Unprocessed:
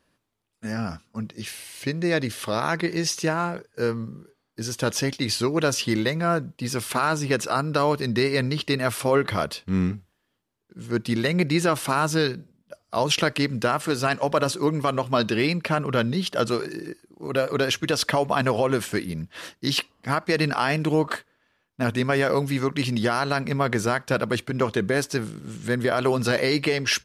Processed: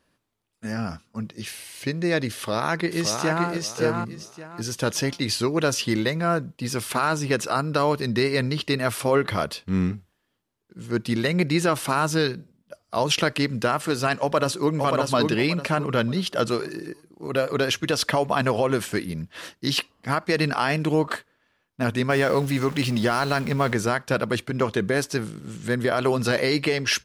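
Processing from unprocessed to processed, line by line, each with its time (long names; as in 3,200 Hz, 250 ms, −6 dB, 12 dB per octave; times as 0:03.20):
0:02.34–0:03.47: delay throw 570 ms, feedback 25%, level −4.5 dB
0:14.20–0:14.76: delay throw 580 ms, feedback 30%, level −3.5 dB
0:22.10–0:23.73: converter with a step at zero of −33.5 dBFS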